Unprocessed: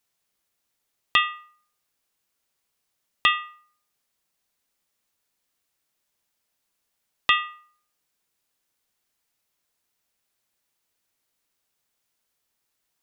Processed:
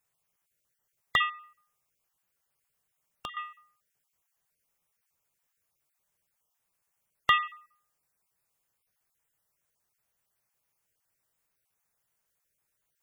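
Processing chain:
time-frequency cells dropped at random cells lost 21%
graphic EQ with 10 bands 125 Hz +5 dB, 250 Hz −8 dB, 4,000 Hz −9 dB
0:01.29–0:03.37: downward compressor 5 to 1, threshold −40 dBFS, peak gain reduction 18 dB
parametric band 180 Hz +3.5 dB 0.25 octaves

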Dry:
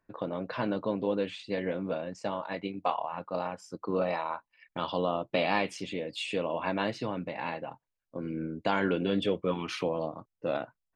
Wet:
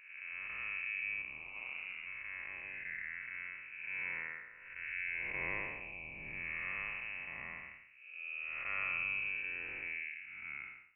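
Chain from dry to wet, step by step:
spectrum smeared in time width 341 ms
0:01.21–0:02.05: ring modulation 29 Hz → 120 Hz
voice inversion scrambler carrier 2,800 Hz
level −6.5 dB

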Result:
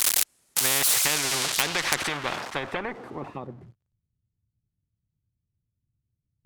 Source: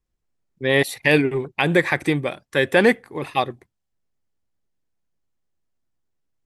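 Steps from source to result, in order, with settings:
spike at every zero crossing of −18 dBFS
downward compressor, threshold −20 dBFS, peak gain reduction 10 dB
dynamic equaliser 960 Hz, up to +7 dB, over −40 dBFS, Q 0.93
low-pass filter sweep 10,000 Hz → 110 Hz, 0:00.86–0:03.78
harmonic generator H 6 −35 dB, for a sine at −3.5 dBFS
spectral tilt +2.5 dB per octave
every bin compressed towards the loudest bin 4 to 1
level −1.5 dB

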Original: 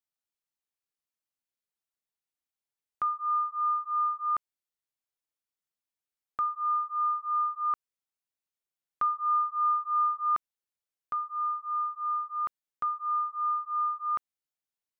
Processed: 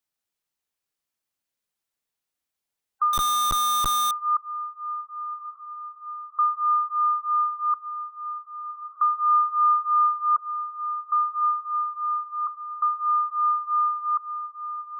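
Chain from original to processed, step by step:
feedback delay with all-pass diffusion 1,146 ms, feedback 56%, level −10.5 dB
gate on every frequency bin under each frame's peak −20 dB strong
0:03.13–0:04.11: comparator with hysteresis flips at −47.5 dBFS
level +6.5 dB

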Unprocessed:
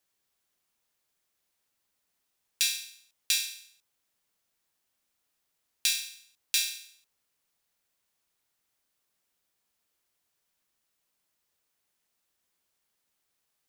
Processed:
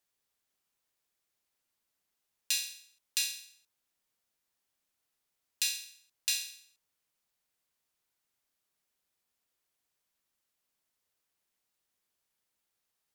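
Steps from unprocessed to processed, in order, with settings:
wrong playback speed 24 fps film run at 25 fps
level −4 dB

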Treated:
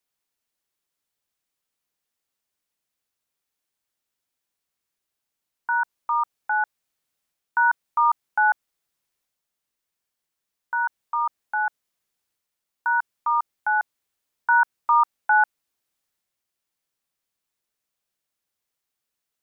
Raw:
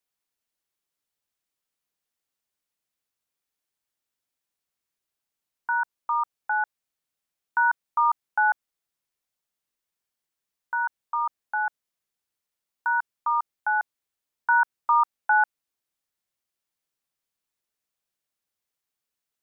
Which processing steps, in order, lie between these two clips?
transient designer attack −1 dB, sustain +3 dB
level +2.5 dB

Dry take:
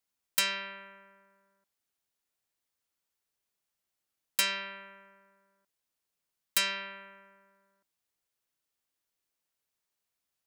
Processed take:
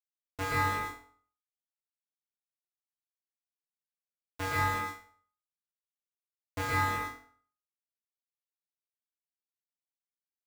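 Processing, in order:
variable-slope delta modulation 32 kbit/s
low-pass filter 1,900 Hz 12 dB per octave
channel vocoder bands 4, square 95.7 Hz
bit reduction 7 bits
flutter between parallel walls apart 4 metres, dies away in 0.42 s
convolution reverb RT60 0.45 s, pre-delay 108 ms, DRR −5 dB

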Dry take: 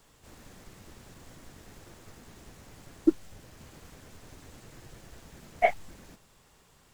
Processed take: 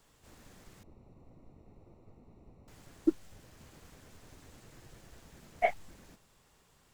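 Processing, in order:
0:00.83–0:02.68: moving average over 27 samples
level −5 dB

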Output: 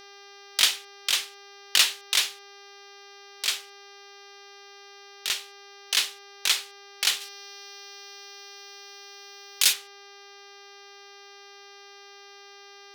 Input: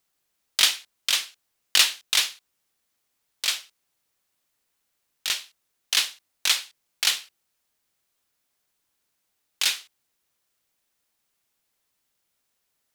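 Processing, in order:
hum with harmonics 400 Hz, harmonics 15, −47 dBFS −2 dB per octave
0:07.20–0:09.72: high-shelf EQ 3,200 Hz → 6,300 Hz +11.5 dB
level −1.5 dB

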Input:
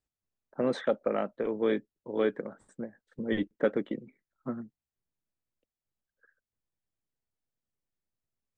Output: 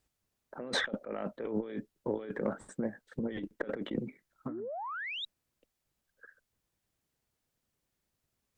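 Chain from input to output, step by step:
sound drawn into the spectrogram rise, 0:04.49–0:05.25, 270–3,900 Hz −29 dBFS
compressor whose output falls as the input rises −39 dBFS, ratio −1
harmonic generator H 4 −30 dB, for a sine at −20 dBFS
level +2 dB

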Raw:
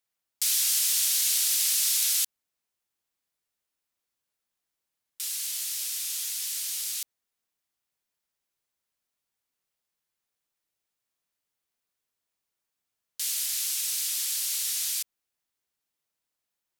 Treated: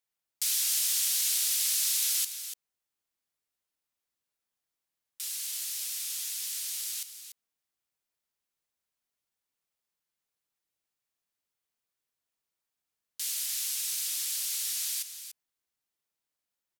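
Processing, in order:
single-tap delay 290 ms −10.5 dB
level −3.5 dB

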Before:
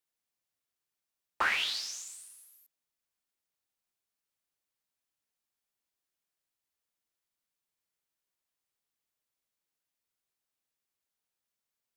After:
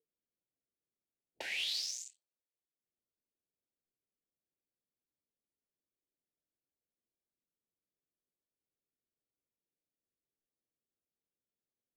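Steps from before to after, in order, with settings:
adaptive Wiener filter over 25 samples
upward compression, threshold −50 dBFS
noise reduction from a noise print of the clip's start 20 dB
low-pass that shuts in the quiet parts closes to 380 Hz, open at −40 dBFS
downward compressor 6 to 1, threshold −33 dBFS, peak gain reduction 8.5 dB
Butterworth band-reject 1,200 Hz, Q 0.83
high-shelf EQ 4,300 Hz +4 dB
mid-hump overdrive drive 13 dB, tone 7,900 Hz, clips at −19.5 dBFS
level −5.5 dB

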